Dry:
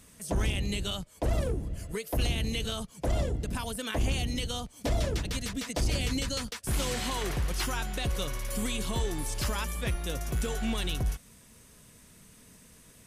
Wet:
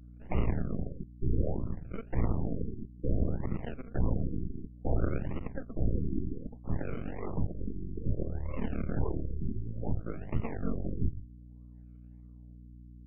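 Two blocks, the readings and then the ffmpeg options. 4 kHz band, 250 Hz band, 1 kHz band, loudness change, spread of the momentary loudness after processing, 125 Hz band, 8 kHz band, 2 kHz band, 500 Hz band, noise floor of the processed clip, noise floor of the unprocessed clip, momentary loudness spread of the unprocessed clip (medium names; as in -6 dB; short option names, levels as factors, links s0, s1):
under -30 dB, -0.5 dB, -8.0 dB, -4.0 dB, 20 LU, -1.0 dB, under -40 dB, -14.0 dB, -4.0 dB, -50 dBFS, -56 dBFS, 4 LU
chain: -filter_complex "[0:a]bandreject=f=50:t=h:w=6,bandreject=f=100:t=h:w=6,bandreject=f=150:t=h:w=6,bandreject=f=200:t=h:w=6,bandreject=f=250:t=h:w=6,bandreject=f=300:t=h:w=6,bandreject=f=350:t=h:w=6,bandreject=f=400:t=h:w=6,afftfilt=real='re*(1-between(b*sr/4096,760,4900))':imag='im*(1-between(b*sr/4096,760,4900))':win_size=4096:overlap=0.75,equalizer=f=2000:w=3.1:g=10.5,aeval=exprs='0.126*(cos(1*acos(clip(val(0)/0.126,-1,1)))-cos(1*PI/2))+0.0316*(cos(3*acos(clip(val(0)/0.126,-1,1)))-cos(3*PI/2))+0.00447*(cos(4*acos(clip(val(0)/0.126,-1,1)))-cos(4*PI/2))+0.0282*(cos(6*acos(clip(val(0)/0.126,-1,1)))-cos(6*PI/2))':c=same,tiltshelf=f=920:g=6,acrossover=split=280|5500[s0][s1][s2];[s1]acrusher=samples=38:mix=1:aa=0.000001:lfo=1:lforange=22.8:lforate=1.6[s3];[s0][s3][s2]amix=inputs=3:normalize=0,aeval=exprs='val(0)+0.00501*(sin(2*PI*60*n/s)+sin(2*PI*2*60*n/s)/2+sin(2*PI*3*60*n/s)/3+sin(2*PI*4*60*n/s)/4+sin(2*PI*5*60*n/s)/5)':c=same,afftfilt=real='re*lt(b*sr/1024,390*pow(3100/390,0.5+0.5*sin(2*PI*0.6*pts/sr)))':imag='im*lt(b*sr/1024,390*pow(3100/390,0.5+0.5*sin(2*PI*0.6*pts/sr)))':win_size=1024:overlap=0.75,volume=0.75"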